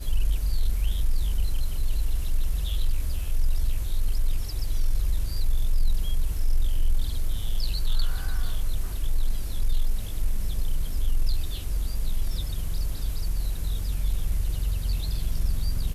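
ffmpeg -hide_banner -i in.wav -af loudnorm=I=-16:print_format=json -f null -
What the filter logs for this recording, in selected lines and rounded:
"input_i" : "-31.1",
"input_tp" : "-13.6",
"input_lra" : "1.6",
"input_thresh" : "-41.1",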